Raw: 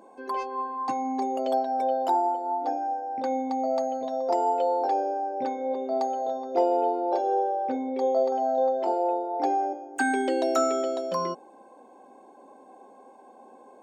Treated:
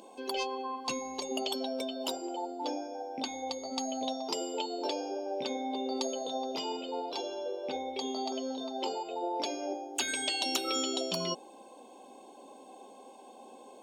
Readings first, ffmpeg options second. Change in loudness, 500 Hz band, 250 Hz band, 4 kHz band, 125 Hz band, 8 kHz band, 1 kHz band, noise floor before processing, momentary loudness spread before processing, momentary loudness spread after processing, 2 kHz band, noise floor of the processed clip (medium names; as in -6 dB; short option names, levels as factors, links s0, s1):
-8.0 dB, -10.0 dB, -5.5 dB, +12.0 dB, no reading, +6.0 dB, -12.0 dB, -52 dBFS, 6 LU, 21 LU, -5.5 dB, -53 dBFS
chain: -af "highshelf=f=2300:t=q:w=3:g=9.5,afftfilt=real='re*lt(hypot(re,im),0.2)':imag='im*lt(hypot(re,im),0.2)':win_size=1024:overlap=0.75"